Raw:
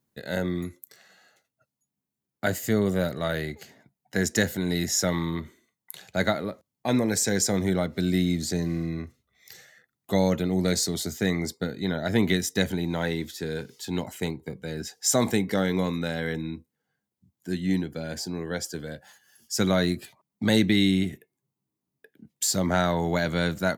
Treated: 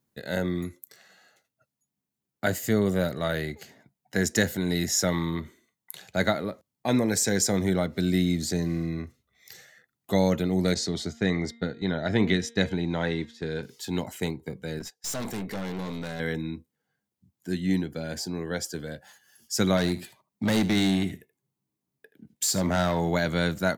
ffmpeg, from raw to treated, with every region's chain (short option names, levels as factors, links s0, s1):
-filter_complex "[0:a]asettb=1/sr,asplit=3[s0][s1][s2];[s0]atrim=end=10.744[s3];[s1]atrim=start=10.74:end=13.63,asetpts=PTS-STARTPTS,afade=t=in:d=0.004:c=qsin,afade=t=out:st=2.886:d=0.004:c=qsin,agate=range=0.398:threshold=0.0178:ratio=16:release=100:detection=peak,lowpass=5100,bandreject=f=232.7:t=h:w=4,bandreject=f=465.4:t=h:w=4,bandreject=f=698.1:t=h:w=4,bandreject=f=930.8:t=h:w=4,bandreject=f=1163.5:t=h:w=4,bandreject=f=1396.2:t=h:w=4,bandreject=f=1628.9:t=h:w=4,bandreject=f=1861.6:t=h:w=4,bandreject=f=2094.3:t=h:w=4,bandreject=f=2327:t=h:w=4,bandreject=f=2559.7:t=h:w=4,bandreject=f=2792.4:t=h:w=4,bandreject=f=3025.1:t=h:w=4,bandreject=f=3257.8:t=h:w=4,bandreject=f=3490.5:t=h:w=4,bandreject=f=3723.2:t=h:w=4,bandreject=f=3955.9:t=h:w=4[s4];[s2]atrim=start=13.626[s5];[s3][s4]acrossfade=d=0.004:c1=hsin:c2=qsin[s6];[s6][s5]acrossfade=d=0.004:c1=qsin:c2=hsin,asettb=1/sr,asplit=3[s7][s8][s9];[s7]atrim=end=14.794[s10];[s8]atrim=start=14.79:end=16.2,asetpts=PTS-STARTPTS,afade=t=in:d=0.004:c=qsin,afade=t=out:st=1.406:d=0.004:c=qsin,agate=range=0.158:threshold=0.0112:ratio=16:release=100:detection=peak,aeval=exprs='(tanh(31.6*val(0)+0.4)-tanh(0.4))/31.6':c=same[s11];[s9]atrim=start=16.196[s12];[s10][s11]acrossfade=d=0.004:c1=hsin:c2=qsin[s13];[s13][s12]acrossfade=d=0.004:c1=qsin:c2=hsin,asettb=1/sr,asplit=3[s14][s15][s16];[s14]atrim=end=19.774[s17];[s15]atrim=start=19.77:end=23.1,asetpts=PTS-STARTPTS,afade=t=in:d=0.004:c=qsin,afade=t=out:st=3.326:d=0.004:c=qsin,asoftclip=type=hard:threshold=0.112,aecho=1:1:77:0.168,atrim=end_sample=146853[s18];[s16]atrim=start=23.096[s19];[s17][s18]acrossfade=d=0.004:c1=hsin:c2=qsin[s20];[s20][s19]acrossfade=d=0.004:c1=qsin:c2=hsin"